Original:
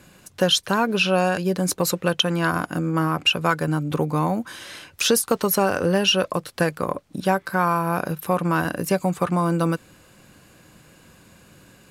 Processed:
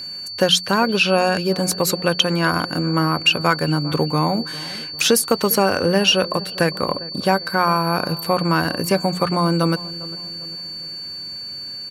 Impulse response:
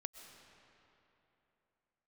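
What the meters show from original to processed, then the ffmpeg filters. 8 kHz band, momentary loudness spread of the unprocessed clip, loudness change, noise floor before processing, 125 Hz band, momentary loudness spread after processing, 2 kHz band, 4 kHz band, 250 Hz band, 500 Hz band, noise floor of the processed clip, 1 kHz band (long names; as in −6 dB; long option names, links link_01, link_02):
+3.0 dB, 6 LU, +2.5 dB, −53 dBFS, +2.5 dB, 12 LU, +3.5 dB, +5.0 dB, +2.5 dB, +3.0 dB, −32 dBFS, +3.0 dB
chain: -filter_complex "[0:a]equalizer=frequency=2200:width=5.4:gain=3,bandreject=frequency=60:width_type=h:width=6,bandreject=frequency=120:width_type=h:width=6,bandreject=frequency=180:width_type=h:width=6,aeval=exprs='val(0)+0.0251*sin(2*PI*4500*n/s)':channel_layout=same,asplit=2[link_01][link_02];[link_02]adelay=401,lowpass=frequency=1000:poles=1,volume=-17dB,asplit=2[link_03][link_04];[link_04]adelay=401,lowpass=frequency=1000:poles=1,volume=0.51,asplit=2[link_05][link_06];[link_06]adelay=401,lowpass=frequency=1000:poles=1,volume=0.51,asplit=2[link_07][link_08];[link_08]adelay=401,lowpass=frequency=1000:poles=1,volume=0.51[link_09];[link_03][link_05][link_07][link_09]amix=inputs=4:normalize=0[link_10];[link_01][link_10]amix=inputs=2:normalize=0,volume=3dB"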